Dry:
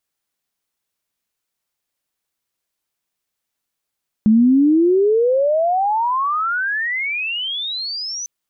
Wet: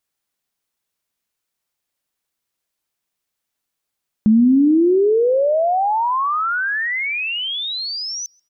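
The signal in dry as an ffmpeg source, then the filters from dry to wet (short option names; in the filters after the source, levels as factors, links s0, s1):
-f lavfi -i "aevalsrc='pow(10,(-8.5-15.5*t/4)/20)*sin(2*PI*210*4/log(6100/210)*(exp(log(6100/210)*t/4)-1))':d=4:s=44100"
-filter_complex "[0:a]asplit=2[s0][s1];[s1]adelay=135,lowpass=f=2100:p=1,volume=0.0891,asplit=2[s2][s3];[s3]adelay=135,lowpass=f=2100:p=1,volume=0.47,asplit=2[s4][s5];[s5]adelay=135,lowpass=f=2100:p=1,volume=0.47[s6];[s0][s2][s4][s6]amix=inputs=4:normalize=0"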